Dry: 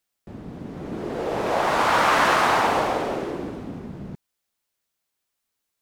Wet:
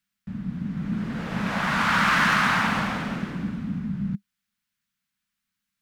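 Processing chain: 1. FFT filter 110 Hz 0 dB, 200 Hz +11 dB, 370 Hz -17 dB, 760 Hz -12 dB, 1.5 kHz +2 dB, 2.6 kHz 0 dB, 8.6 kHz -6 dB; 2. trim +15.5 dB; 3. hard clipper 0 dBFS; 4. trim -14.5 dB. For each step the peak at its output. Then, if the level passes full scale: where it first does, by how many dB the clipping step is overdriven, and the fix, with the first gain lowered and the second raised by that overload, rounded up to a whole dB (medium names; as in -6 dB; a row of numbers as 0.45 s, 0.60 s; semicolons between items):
-8.5 dBFS, +7.0 dBFS, 0.0 dBFS, -14.5 dBFS; step 2, 7.0 dB; step 2 +8.5 dB, step 4 -7.5 dB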